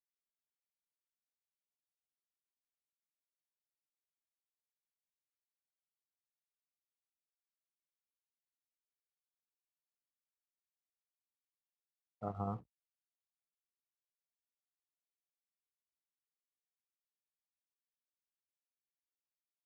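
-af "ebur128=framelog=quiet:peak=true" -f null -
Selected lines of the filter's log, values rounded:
Integrated loudness:
  I:         -42.9 LUFS
  Threshold: -52.9 LUFS
Loudness range:
  LRA:         4.7 LU
  Threshold: -69.6 LUFS
  LRA low:   -54.0 LUFS
  LRA high:  -49.2 LUFS
True peak:
  Peak:      -25.8 dBFS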